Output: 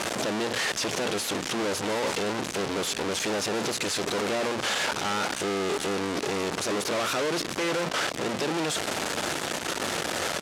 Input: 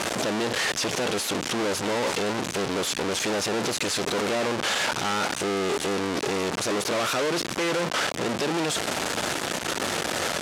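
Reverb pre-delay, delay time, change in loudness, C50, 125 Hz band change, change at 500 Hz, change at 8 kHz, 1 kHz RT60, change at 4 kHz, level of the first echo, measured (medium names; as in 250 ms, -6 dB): no reverb, 709 ms, -2.0 dB, no reverb, -2.5 dB, -2.0 dB, -2.0 dB, no reverb, -2.0 dB, -16.5 dB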